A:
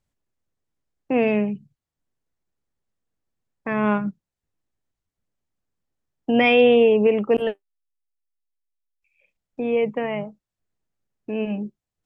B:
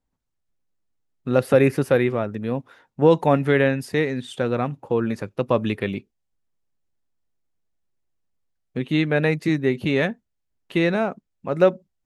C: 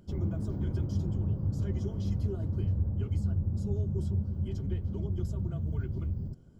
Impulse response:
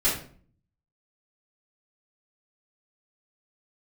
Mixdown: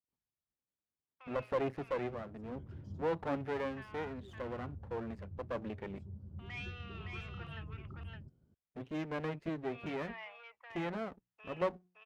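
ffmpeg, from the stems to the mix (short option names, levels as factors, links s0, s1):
-filter_complex "[0:a]acompressor=threshold=0.0891:ratio=3,asoftclip=type=tanh:threshold=0.112,highpass=f=1000:w=0.5412,highpass=f=1000:w=1.3066,adelay=100,volume=0.355,afade=t=in:st=6.43:d=0.64:silence=0.446684,asplit=2[s0][s1];[s1]volume=0.668[s2];[1:a]lowpass=f=2300:p=1,bandreject=f=60:t=h:w=6,bandreject=f=120:t=h:w=6,bandreject=f=180:t=h:w=6,aeval=exprs='max(val(0),0)':c=same,volume=0.266,asplit=2[s3][s4];[2:a]adelay=1950,volume=0.211[s5];[s4]apad=whole_len=376741[s6];[s5][s6]sidechaincompress=threshold=0.01:ratio=8:attack=30:release=1050[s7];[s2]aecho=0:1:565:1[s8];[s0][s3][s7][s8]amix=inputs=4:normalize=0,highpass=50,highshelf=f=5400:g=-10.5"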